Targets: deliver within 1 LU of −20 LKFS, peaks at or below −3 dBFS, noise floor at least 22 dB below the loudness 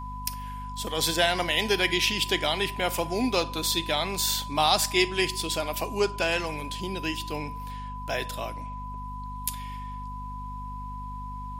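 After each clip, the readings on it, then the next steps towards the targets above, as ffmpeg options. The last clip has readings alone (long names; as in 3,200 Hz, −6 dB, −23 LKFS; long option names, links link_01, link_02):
mains hum 50 Hz; hum harmonics up to 250 Hz; level of the hum −36 dBFS; interfering tone 1,000 Hz; level of the tone −37 dBFS; integrated loudness −26.5 LKFS; sample peak −8.0 dBFS; target loudness −20.0 LKFS
→ -af "bandreject=frequency=50:width_type=h:width=6,bandreject=frequency=100:width_type=h:width=6,bandreject=frequency=150:width_type=h:width=6,bandreject=frequency=200:width_type=h:width=6,bandreject=frequency=250:width_type=h:width=6"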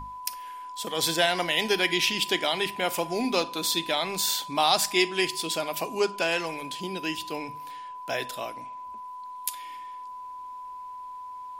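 mains hum none found; interfering tone 1,000 Hz; level of the tone −37 dBFS
→ -af "bandreject=frequency=1000:width=30"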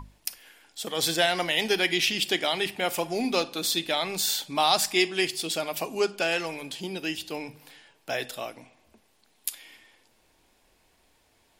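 interfering tone none found; integrated loudness −27.0 LKFS; sample peak −8.5 dBFS; target loudness −20.0 LKFS
→ -af "volume=7dB,alimiter=limit=-3dB:level=0:latency=1"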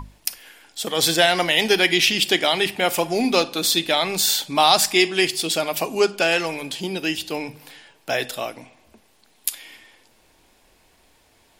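integrated loudness −20.0 LKFS; sample peak −3.0 dBFS; background noise floor −59 dBFS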